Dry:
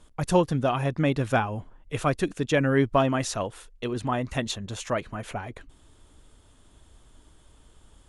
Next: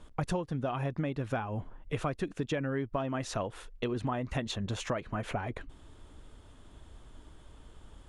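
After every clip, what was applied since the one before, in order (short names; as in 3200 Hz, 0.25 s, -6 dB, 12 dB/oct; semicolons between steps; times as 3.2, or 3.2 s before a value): high shelf 5200 Hz -12 dB; compressor 12:1, threshold -32 dBFS, peak gain reduction 17.5 dB; gain +3 dB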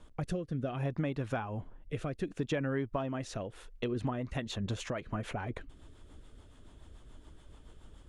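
rotary speaker horn 0.65 Hz, later 7 Hz, at 3.46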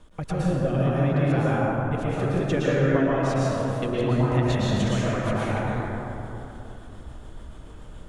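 plate-style reverb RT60 3.3 s, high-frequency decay 0.35×, pre-delay 0.1 s, DRR -8 dB; gain +3.5 dB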